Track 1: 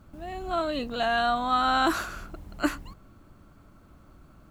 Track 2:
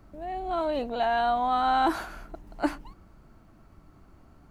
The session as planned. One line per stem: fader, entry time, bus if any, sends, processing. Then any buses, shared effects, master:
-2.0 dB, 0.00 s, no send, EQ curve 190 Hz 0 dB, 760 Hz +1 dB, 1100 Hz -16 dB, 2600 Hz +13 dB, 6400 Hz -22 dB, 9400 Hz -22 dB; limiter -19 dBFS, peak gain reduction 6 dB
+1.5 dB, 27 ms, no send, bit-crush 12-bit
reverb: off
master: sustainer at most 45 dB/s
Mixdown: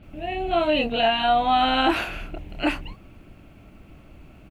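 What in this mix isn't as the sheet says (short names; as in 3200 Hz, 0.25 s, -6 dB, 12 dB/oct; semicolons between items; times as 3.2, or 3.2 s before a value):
stem 1 -2.0 dB -> +5.0 dB; master: missing sustainer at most 45 dB/s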